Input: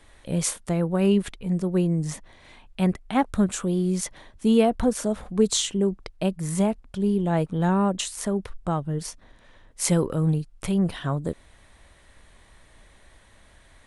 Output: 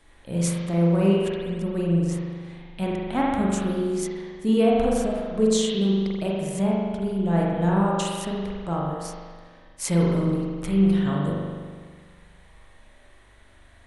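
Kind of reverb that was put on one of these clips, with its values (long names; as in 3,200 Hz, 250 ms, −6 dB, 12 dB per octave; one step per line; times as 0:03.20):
spring reverb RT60 1.7 s, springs 41 ms, chirp 40 ms, DRR −4 dB
level −4.5 dB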